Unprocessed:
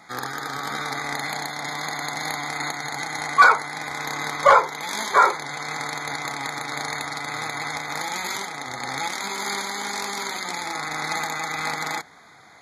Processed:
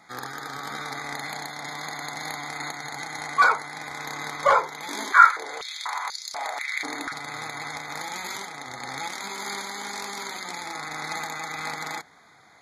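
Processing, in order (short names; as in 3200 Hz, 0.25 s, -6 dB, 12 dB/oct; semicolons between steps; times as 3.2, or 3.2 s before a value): 4.88–7.12 stepped high-pass 4.1 Hz 290–4900 Hz; gain -5 dB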